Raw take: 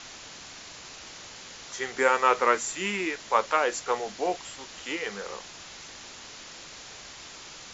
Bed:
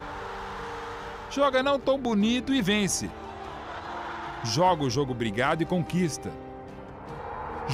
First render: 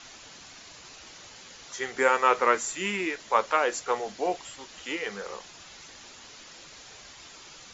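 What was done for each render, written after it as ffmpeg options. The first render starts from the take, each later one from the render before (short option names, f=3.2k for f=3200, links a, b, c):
-af "afftdn=nr=6:nf=-45"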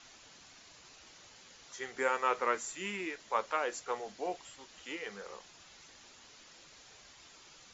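-af "volume=-9dB"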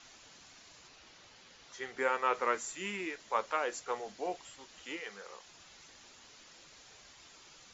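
-filter_complex "[0:a]asettb=1/sr,asplit=3[a][b][c];[a]atrim=end=0.874[d];[b]atrim=start=0.87:end=2.34,asetpts=PTS-STARTPTS,afade=t=in:d=0.004:c=qsin,afade=t=out:st=1.466:d=0.004:c=qsin,lowpass=5.6k[e];[c]atrim=start=2.336[f];[d][e]acrossfade=d=0.004:c1=hsin:c2=qsin[g];[g][f]acrossfade=d=0.004:c1=qsin:c2=hsin,asettb=1/sr,asplit=3[h][i][j];[h]atrim=end=5.004[k];[i]atrim=start=5:end=5.47,asetpts=PTS-STARTPTS,afade=t=in:d=0.004:c=qsin,afade=t=out:st=0.466:d=0.004:c=qsin,lowshelf=f=450:g=-8.5[l];[j]atrim=start=5.466[m];[k][l]acrossfade=d=0.004:c1=hsin:c2=qsin[n];[n][m]acrossfade=d=0.004:c1=qsin:c2=hsin"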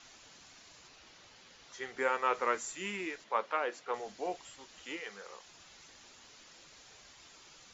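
-filter_complex "[0:a]asettb=1/sr,asplit=3[a][b][c];[a]atrim=end=3.244[d];[b]atrim=start=3.24:end=3.94,asetpts=PTS-STARTPTS,afade=t=in:d=0.004:c=qsin,afade=t=out:st=0.696:d=0.004:c=qsin,highpass=170,lowpass=3.8k[e];[c]atrim=start=3.936[f];[d][e]acrossfade=d=0.004:c1=hsin:c2=qsin[g];[g][f]acrossfade=d=0.004:c1=qsin:c2=hsin"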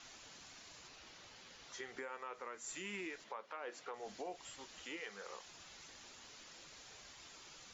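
-af "acompressor=threshold=-37dB:ratio=6,alimiter=level_in=10.5dB:limit=-24dB:level=0:latency=1:release=255,volume=-10.5dB"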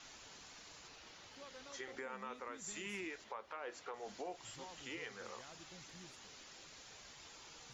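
-filter_complex "[1:a]volume=-33dB[a];[0:a][a]amix=inputs=2:normalize=0"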